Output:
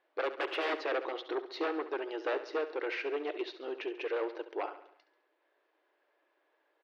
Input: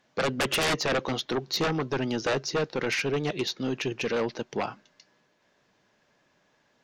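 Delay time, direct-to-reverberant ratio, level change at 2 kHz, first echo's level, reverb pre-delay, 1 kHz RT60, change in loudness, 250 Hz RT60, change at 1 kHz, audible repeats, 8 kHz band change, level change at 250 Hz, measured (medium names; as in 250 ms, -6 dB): 69 ms, no reverb, -8.0 dB, -13.0 dB, no reverb, no reverb, -7.5 dB, no reverb, -6.0 dB, 4, under -25 dB, -10.0 dB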